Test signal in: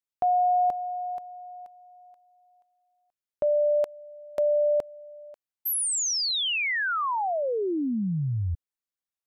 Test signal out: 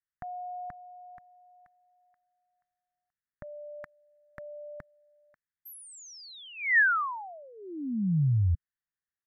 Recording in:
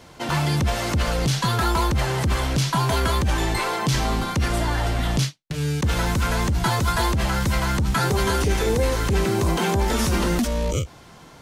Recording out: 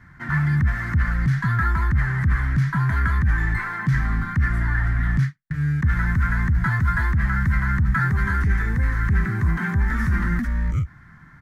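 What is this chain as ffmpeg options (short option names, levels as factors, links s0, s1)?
-af "firequalizer=gain_entry='entry(150,0);entry(480,-27);entry(1200,-5);entry(1800,5);entry(2700,-23);entry(9300,-25);entry(14000,-20)':delay=0.05:min_phase=1,volume=1.41"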